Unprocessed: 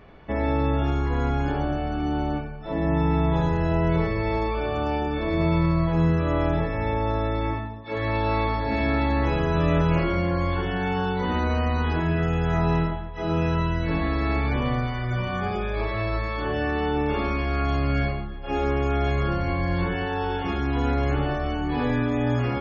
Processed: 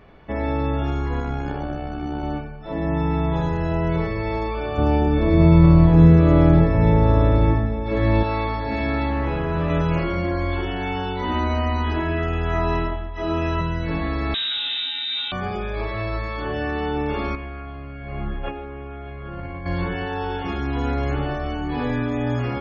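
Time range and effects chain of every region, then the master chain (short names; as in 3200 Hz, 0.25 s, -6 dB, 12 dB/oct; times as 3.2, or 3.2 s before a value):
1.2–2.23 notch 3100 Hz, Q 14 + AM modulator 64 Hz, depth 35%
4.78–8.23 low shelf 480 Hz +11 dB + echo 0.852 s -10 dB
9.1–9.7 hard clip -17.5 dBFS + LPF 3000 Hz
10.24–13.61 comb 3.1 ms, depth 61% + feedback echo 96 ms, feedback 54%, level -21.5 dB
14.34–15.32 median filter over 9 samples + hard clip -23.5 dBFS + inverted band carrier 3800 Hz
17.35–19.66 LPF 3200 Hz 24 dB/oct + negative-ratio compressor -32 dBFS
whole clip: dry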